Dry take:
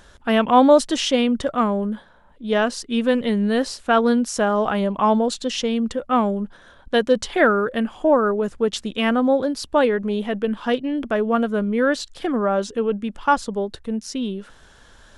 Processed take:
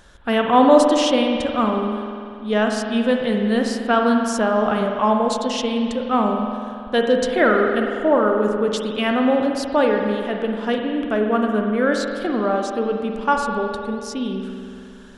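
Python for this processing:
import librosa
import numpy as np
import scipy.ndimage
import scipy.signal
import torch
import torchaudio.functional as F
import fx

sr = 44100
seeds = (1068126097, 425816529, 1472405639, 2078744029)

y = fx.rev_spring(x, sr, rt60_s=2.4, pass_ms=(47,), chirp_ms=75, drr_db=2.0)
y = y * librosa.db_to_amplitude(-1.0)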